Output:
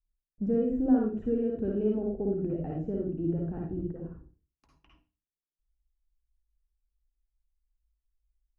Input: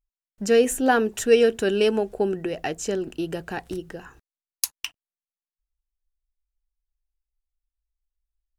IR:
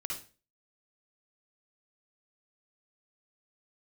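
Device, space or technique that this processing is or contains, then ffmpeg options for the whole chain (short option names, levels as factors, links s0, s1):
television next door: -filter_complex "[0:a]acompressor=threshold=0.112:ratio=4,lowpass=320[s0];[1:a]atrim=start_sample=2205[s1];[s0][s1]afir=irnorm=-1:irlink=0,adynamicequalizer=threshold=0.00891:dfrequency=370:dqfactor=1.2:tfrequency=370:tqfactor=1.2:attack=5:release=100:ratio=0.375:range=2.5:mode=cutabove:tftype=bell,volume=1.5"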